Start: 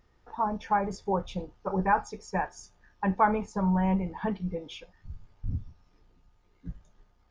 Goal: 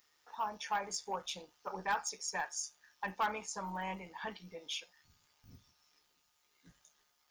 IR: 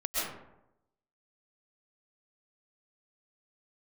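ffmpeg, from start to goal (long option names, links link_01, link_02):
-af "aderivative,tremolo=f=150:d=0.4,asoftclip=type=tanh:threshold=-38.5dB,volume=12.5dB"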